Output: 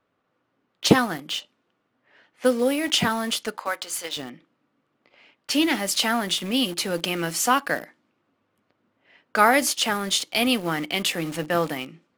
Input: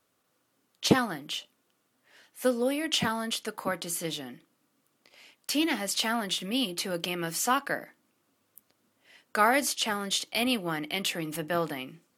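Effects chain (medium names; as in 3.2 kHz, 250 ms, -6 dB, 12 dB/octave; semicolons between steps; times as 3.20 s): 3.57–4.17 s: high-pass 650 Hz 12 dB/octave; level-controlled noise filter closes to 2.3 kHz, open at -27.5 dBFS; in parallel at -8.5 dB: bit crusher 6-bit; on the sum: trim +3 dB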